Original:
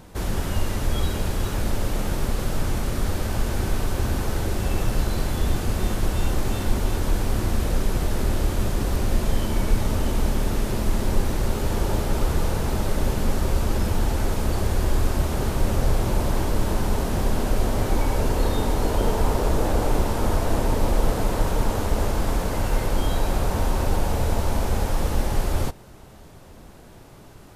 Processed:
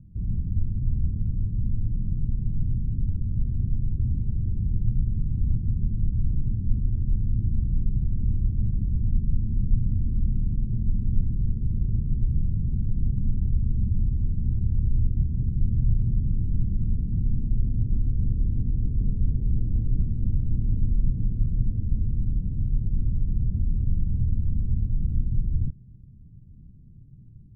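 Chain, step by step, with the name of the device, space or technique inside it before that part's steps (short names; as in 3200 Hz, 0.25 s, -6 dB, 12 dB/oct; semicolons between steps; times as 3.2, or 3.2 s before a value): the neighbour's flat through the wall (LPF 200 Hz 24 dB/oct; bell 120 Hz +5.5 dB 0.66 oct); gain -1.5 dB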